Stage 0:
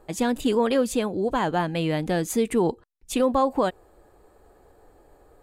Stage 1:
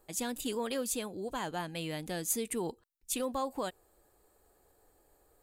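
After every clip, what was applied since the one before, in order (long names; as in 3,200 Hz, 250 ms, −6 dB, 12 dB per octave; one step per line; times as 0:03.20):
first-order pre-emphasis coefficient 0.8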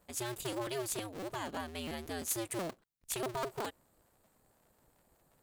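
sub-harmonics by changed cycles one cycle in 2, inverted
level −3 dB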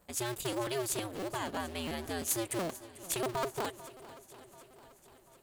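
feedback echo with a long and a short gap by turns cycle 739 ms, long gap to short 1.5 to 1, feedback 48%, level −17 dB
level +3 dB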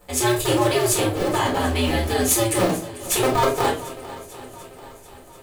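convolution reverb RT60 0.40 s, pre-delay 4 ms, DRR −4 dB
level +8.5 dB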